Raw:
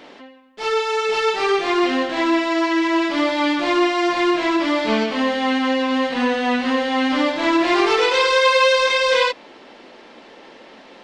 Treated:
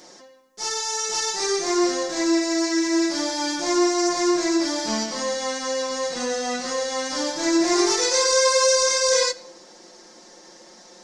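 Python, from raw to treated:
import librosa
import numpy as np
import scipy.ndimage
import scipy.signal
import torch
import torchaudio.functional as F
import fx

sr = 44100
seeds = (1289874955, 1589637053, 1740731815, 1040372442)

y = fx.high_shelf_res(x, sr, hz=4200.0, db=13.5, q=3.0)
y = y + 0.62 * np.pad(y, (int(5.6 * sr / 1000.0), 0))[:len(y)]
y = fx.room_shoebox(y, sr, seeds[0], volume_m3=3400.0, walls='furnished', distance_m=0.65)
y = F.gain(torch.from_numpy(y), -7.0).numpy()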